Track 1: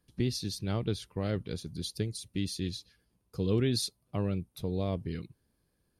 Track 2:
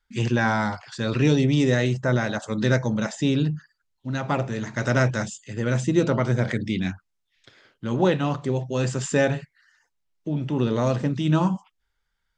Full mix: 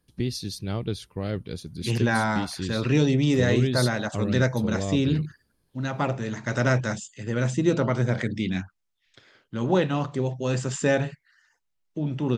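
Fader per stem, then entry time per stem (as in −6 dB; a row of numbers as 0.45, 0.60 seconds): +2.5, −1.5 decibels; 0.00, 1.70 seconds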